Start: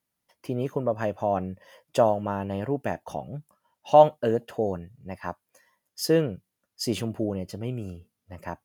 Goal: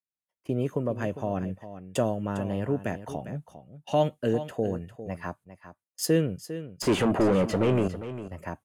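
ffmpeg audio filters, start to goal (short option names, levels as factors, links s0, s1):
-filter_complex "[0:a]agate=range=0.0562:threshold=0.00501:ratio=16:detection=peak,bandreject=f=860:w=18,acrossover=split=450|1500[s0][s1][s2];[s1]acompressor=threshold=0.0126:ratio=6[s3];[s0][s3][s2]amix=inputs=3:normalize=0,asettb=1/sr,asplit=3[s4][s5][s6];[s4]atrim=end=6.824[s7];[s5]atrim=start=6.82:end=7.88,asetpts=PTS-STARTPTS,afade=t=in:d=0.004:c=qsin,afade=t=out:st=1.056:d=0.004:c=qsin,asplit=2[s8][s9];[s9]highpass=f=720:p=1,volume=35.5,asoftclip=type=tanh:threshold=0.178[s10];[s8][s10]amix=inputs=2:normalize=0,lowpass=f=1100:p=1,volume=0.501[s11];[s6]atrim=start=7.876[s12];[s7][s11]acrossfade=d=0.004:c1=hsin:c2=qsin[s13];[s13][s12]acrossfade=d=0.004:c1=qsin:c2=hsin,aecho=1:1:402:0.237,adynamicsmooth=sensitivity=1:basefreq=5400,aexciter=amount=5.4:drive=4.5:freq=7100,volume=1.19"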